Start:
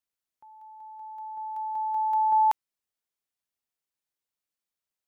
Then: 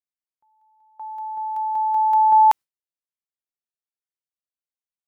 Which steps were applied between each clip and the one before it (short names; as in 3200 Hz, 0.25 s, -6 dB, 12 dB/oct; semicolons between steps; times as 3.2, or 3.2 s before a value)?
gate with hold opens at -39 dBFS; gain +8 dB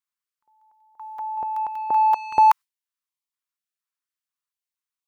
resonant low shelf 760 Hz -11.5 dB, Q 3; in parallel at -7 dB: soft clip -19 dBFS, distortion -9 dB; on the sum: stepped notch 4.2 Hz 380–1500 Hz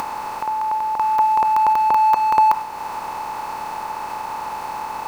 per-bin compression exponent 0.2; reverb, pre-delay 3 ms, DRR 12 dB; upward compressor, threshold -21 dBFS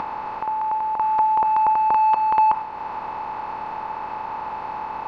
in parallel at -10.5 dB: sine folder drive 6 dB, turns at -2 dBFS; on the sum: air absorption 320 m; gain -6 dB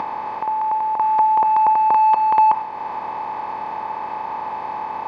notch comb 1400 Hz; gain +3 dB